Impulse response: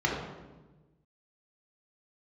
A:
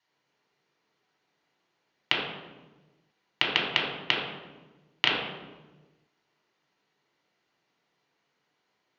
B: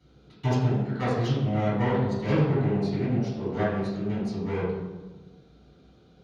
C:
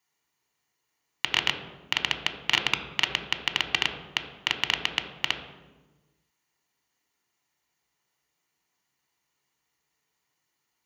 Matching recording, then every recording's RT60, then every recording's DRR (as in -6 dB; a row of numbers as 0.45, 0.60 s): A; 1.2, 1.2, 1.2 s; -3.0, -12.5, 6.0 dB